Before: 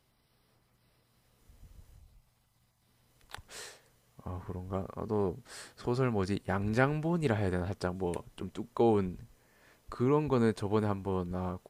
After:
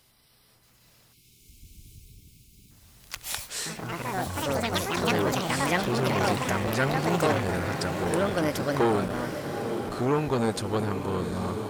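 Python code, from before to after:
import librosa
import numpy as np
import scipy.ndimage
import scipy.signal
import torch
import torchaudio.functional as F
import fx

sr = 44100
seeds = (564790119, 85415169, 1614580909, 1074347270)

p1 = fx.echo_pitch(x, sr, ms=634, semitones=5, count=3, db_per_echo=-3.0)
p2 = fx.high_shelf(p1, sr, hz=2200.0, db=10.0)
p3 = p2 + fx.echo_diffused(p2, sr, ms=849, feedback_pct=53, wet_db=-9.0, dry=0)
p4 = fx.spec_box(p3, sr, start_s=1.13, length_s=1.58, low_hz=450.0, high_hz=2100.0, gain_db=-22)
p5 = fx.transformer_sat(p4, sr, knee_hz=1400.0)
y = F.gain(torch.from_numpy(p5), 5.0).numpy()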